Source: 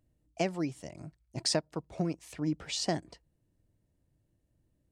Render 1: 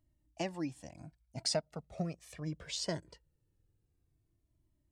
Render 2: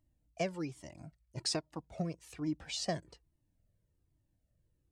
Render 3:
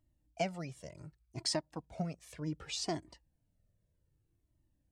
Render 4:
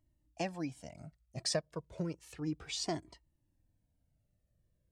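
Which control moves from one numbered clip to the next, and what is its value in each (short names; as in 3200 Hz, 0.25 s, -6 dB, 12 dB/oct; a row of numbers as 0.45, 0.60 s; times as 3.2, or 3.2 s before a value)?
cascading flanger, rate: 0.21, 1.2, 0.66, 0.32 Hz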